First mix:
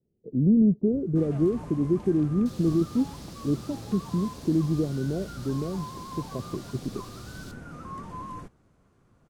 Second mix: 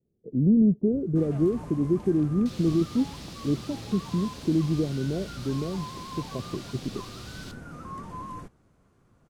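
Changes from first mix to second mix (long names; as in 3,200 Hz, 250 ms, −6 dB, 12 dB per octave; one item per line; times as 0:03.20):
second sound: remove first difference
master: add high-shelf EQ 11,000 Hz +3 dB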